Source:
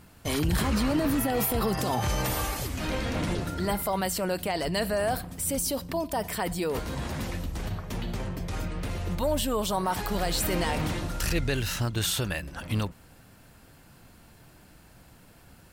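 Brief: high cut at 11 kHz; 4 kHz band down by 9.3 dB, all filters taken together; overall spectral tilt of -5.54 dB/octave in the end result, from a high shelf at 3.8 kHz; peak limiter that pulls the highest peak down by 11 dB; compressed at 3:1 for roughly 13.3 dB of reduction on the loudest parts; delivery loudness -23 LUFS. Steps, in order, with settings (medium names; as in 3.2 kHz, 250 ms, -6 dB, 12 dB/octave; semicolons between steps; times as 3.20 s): low-pass 11 kHz; treble shelf 3.8 kHz -6 dB; peaking EQ 4 kHz -8.5 dB; compression 3:1, threshold -41 dBFS; trim +24.5 dB; peak limiter -14 dBFS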